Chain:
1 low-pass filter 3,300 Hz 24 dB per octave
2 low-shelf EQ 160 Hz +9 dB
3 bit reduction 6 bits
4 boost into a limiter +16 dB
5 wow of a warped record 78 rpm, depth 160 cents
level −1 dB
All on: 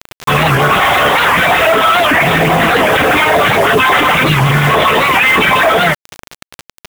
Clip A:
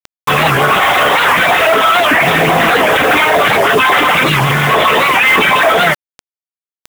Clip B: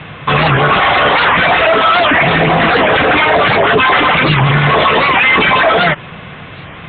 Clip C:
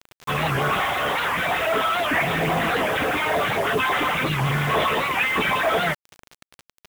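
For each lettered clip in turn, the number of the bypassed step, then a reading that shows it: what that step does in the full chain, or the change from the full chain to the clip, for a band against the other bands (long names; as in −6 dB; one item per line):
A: 2, 125 Hz band −4.5 dB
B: 3, distortion level −19 dB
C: 4, change in crest factor +3.0 dB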